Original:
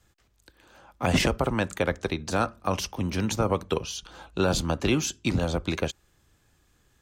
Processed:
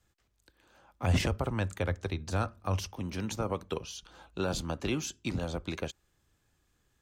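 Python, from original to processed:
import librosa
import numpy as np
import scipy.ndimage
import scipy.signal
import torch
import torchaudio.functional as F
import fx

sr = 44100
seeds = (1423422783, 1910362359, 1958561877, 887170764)

y = fx.peak_eq(x, sr, hz=93.0, db=12.5, octaves=0.62, at=(1.03, 2.94))
y = F.gain(torch.from_numpy(y), -8.0).numpy()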